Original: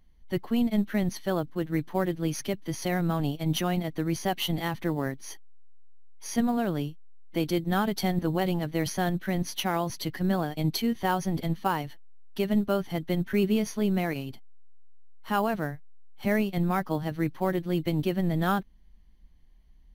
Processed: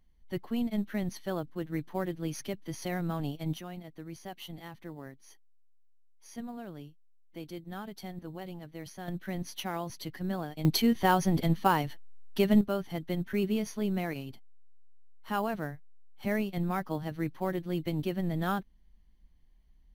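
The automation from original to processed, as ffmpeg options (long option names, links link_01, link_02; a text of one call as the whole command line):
ffmpeg -i in.wav -af "asetnsamples=nb_out_samples=441:pad=0,asendcmd='3.54 volume volume -15dB;9.08 volume volume -7.5dB;10.65 volume volume 2dB;12.61 volume volume -5dB',volume=-6dB" out.wav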